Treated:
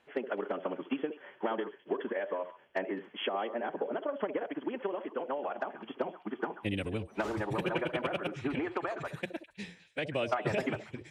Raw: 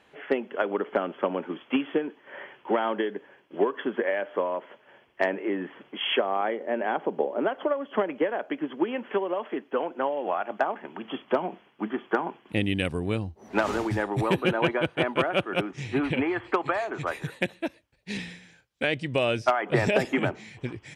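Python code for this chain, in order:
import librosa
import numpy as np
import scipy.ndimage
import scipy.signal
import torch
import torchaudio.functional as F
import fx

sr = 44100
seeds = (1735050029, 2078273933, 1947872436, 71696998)

y = fx.hum_notches(x, sr, base_hz=60, count=3)
y = fx.echo_stepped(y, sr, ms=130, hz=470.0, octaves=1.4, feedback_pct=70, wet_db=-8.5)
y = fx.stretch_vocoder(y, sr, factor=0.53)
y = F.gain(torch.from_numpy(y), -6.5).numpy()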